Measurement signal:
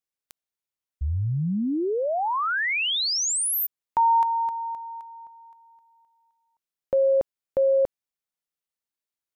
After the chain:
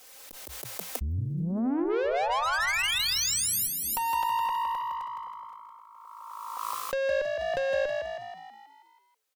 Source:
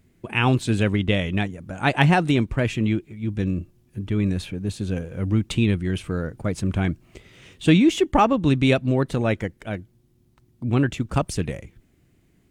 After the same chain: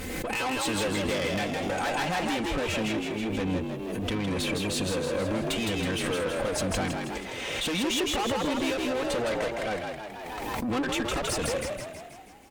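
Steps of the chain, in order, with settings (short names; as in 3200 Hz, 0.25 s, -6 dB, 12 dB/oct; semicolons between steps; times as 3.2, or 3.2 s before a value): resonant low shelf 330 Hz -8 dB, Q 1.5; comb 3.9 ms, depth 91%; compressor 2.5:1, threshold -30 dBFS; tube stage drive 35 dB, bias 0.3; frequency-shifting echo 0.161 s, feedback 56%, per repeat +54 Hz, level -4 dB; backwards sustainer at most 23 dB/s; gain +7.5 dB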